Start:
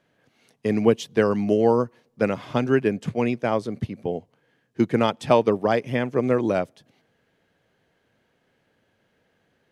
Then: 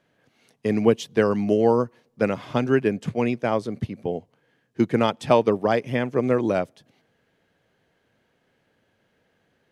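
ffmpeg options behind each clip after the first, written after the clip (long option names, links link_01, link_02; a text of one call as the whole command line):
ffmpeg -i in.wav -af anull out.wav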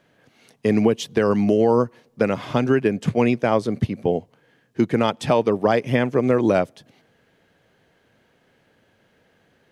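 ffmpeg -i in.wav -af "alimiter=limit=-13.5dB:level=0:latency=1:release=197,volume=6.5dB" out.wav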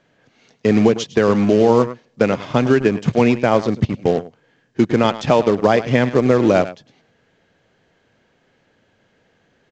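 ffmpeg -i in.wav -filter_complex "[0:a]aecho=1:1:105:0.2,asplit=2[link_01][link_02];[link_02]acrusher=bits=3:mix=0:aa=0.5,volume=-5dB[link_03];[link_01][link_03]amix=inputs=2:normalize=0" -ar 16000 -c:a pcm_mulaw out.wav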